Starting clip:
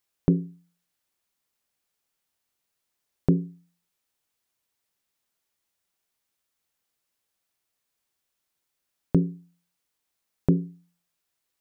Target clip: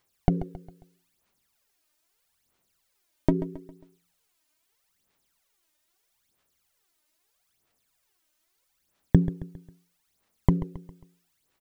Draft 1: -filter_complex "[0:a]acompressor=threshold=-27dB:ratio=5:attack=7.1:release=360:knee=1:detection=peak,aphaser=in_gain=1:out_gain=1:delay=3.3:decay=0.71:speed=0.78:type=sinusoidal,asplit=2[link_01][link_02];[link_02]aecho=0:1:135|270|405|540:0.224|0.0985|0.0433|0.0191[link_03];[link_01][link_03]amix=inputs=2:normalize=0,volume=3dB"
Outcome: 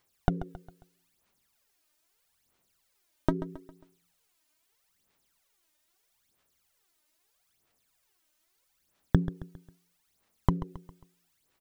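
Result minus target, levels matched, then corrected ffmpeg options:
downward compressor: peak gain reduction +6.5 dB
-filter_complex "[0:a]acompressor=threshold=-19dB:ratio=5:attack=7.1:release=360:knee=1:detection=peak,aphaser=in_gain=1:out_gain=1:delay=3.3:decay=0.71:speed=0.78:type=sinusoidal,asplit=2[link_01][link_02];[link_02]aecho=0:1:135|270|405|540:0.224|0.0985|0.0433|0.0191[link_03];[link_01][link_03]amix=inputs=2:normalize=0,volume=3dB"

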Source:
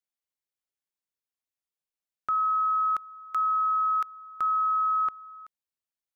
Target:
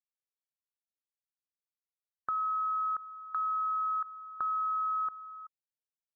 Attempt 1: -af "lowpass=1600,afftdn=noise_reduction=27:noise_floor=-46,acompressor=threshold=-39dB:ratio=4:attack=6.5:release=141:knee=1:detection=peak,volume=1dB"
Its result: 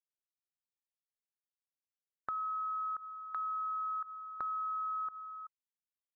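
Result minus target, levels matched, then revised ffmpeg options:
downward compressor: peak gain reduction +5 dB
-af "lowpass=1600,afftdn=noise_reduction=27:noise_floor=-46,acompressor=threshold=-32dB:ratio=4:attack=6.5:release=141:knee=1:detection=peak,volume=1dB"

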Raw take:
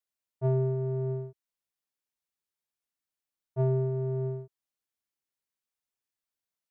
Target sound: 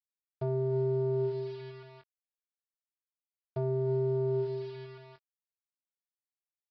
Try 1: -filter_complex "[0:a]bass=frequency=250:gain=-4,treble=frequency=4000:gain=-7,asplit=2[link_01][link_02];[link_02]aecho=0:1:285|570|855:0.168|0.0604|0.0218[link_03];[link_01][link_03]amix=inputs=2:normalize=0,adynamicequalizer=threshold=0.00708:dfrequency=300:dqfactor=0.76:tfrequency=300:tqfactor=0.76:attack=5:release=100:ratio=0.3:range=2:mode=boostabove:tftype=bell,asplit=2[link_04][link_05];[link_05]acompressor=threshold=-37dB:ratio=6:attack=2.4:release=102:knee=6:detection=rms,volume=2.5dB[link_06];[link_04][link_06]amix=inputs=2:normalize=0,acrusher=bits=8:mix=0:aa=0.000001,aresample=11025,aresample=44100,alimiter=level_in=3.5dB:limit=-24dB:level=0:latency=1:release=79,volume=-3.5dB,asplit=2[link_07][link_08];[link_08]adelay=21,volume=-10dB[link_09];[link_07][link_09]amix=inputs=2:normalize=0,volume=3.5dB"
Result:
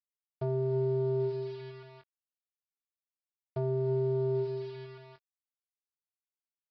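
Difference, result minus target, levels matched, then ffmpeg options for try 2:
downward compressor: peak gain reduction +9 dB
-filter_complex "[0:a]bass=frequency=250:gain=-4,treble=frequency=4000:gain=-7,asplit=2[link_01][link_02];[link_02]aecho=0:1:285|570|855:0.168|0.0604|0.0218[link_03];[link_01][link_03]amix=inputs=2:normalize=0,adynamicequalizer=threshold=0.00708:dfrequency=300:dqfactor=0.76:tfrequency=300:tqfactor=0.76:attack=5:release=100:ratio=0.3:range=2:mode=boostabove:tftype=bell,asplit=2[link_04][link_05];[link_05]acompressor=threshold=-26dB:ratio=6:attack=2.4:release=102:knee=6:detection=rms,volume=2.5dB[link_06];[link_04][link_06]amix=inputs=2:normalize=0,acrusher=bits=8:mix=0:aa=0.000001,aresample=11025,aresample=44100,alimiter=level_in=3.5dB:limit=-24dB:level=0:latency=1:release=79,volume=-3.5dB,asplit=2[link_07][link_08];[link_08]adelay=21,volume=-10dB[link_09];[link_07][link_09]amix=inputs=2:normalize=0,volume=3.5dB"

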